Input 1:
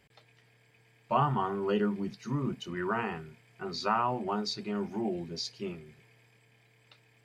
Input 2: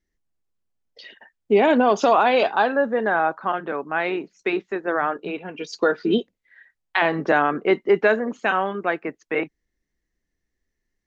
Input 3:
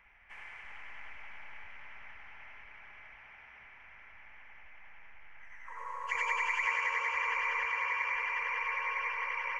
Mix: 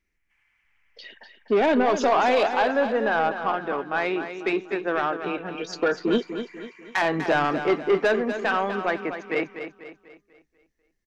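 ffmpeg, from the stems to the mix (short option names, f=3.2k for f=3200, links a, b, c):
-filter_complex "[1:a]asoftclip=type=tanh:threshold=-14dB,volume=-0.5dB,asplit=2[a][b];[b]volume=-9.5dB[c];[2:a]equalizer=f=630:t=o:w=2.5:g=-14,volume=-15dB[d];[c]aecho=0:1:246|492|738|984|1230|1476:1|0.43|0.185|0.0795|0.0342|0.0147[e];[a][d][e]amix=inputs=3:normalize=0"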